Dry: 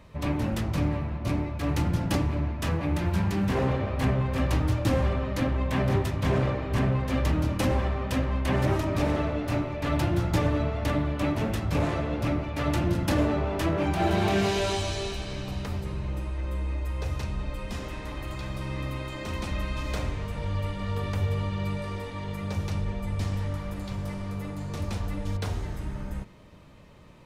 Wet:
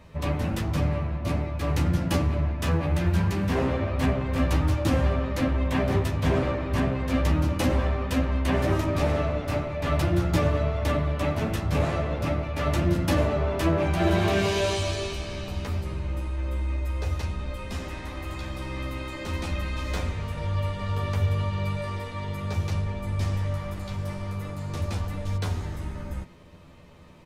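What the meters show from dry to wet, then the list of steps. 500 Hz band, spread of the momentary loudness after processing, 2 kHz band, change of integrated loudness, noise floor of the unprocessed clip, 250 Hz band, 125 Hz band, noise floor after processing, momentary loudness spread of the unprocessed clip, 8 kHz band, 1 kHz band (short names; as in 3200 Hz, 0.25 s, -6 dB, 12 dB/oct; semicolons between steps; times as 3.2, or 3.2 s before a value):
+2.0 dB, 10 LU, +1.5 dB, +1.5 dB, -37 dBFS, +0.5 dB, +1.5 dB, -37 dBFS, 9 LU, +1.5 dB, +0.5 dB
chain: doubler 12 ms -4 dB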